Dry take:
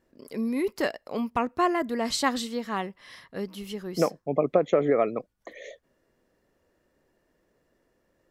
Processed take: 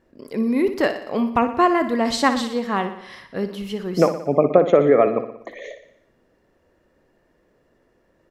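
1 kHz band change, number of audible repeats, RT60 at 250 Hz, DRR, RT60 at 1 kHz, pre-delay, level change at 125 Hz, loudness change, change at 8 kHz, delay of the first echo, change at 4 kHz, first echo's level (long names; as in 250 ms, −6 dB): +7.5 dB, 6, no reverb audible, no reverb audible, no reverb audible, no reverb audible, +8.0 dB, +7.5 dB, +1.5 dB, 60 ms, +4.0 dB, −11.0 dB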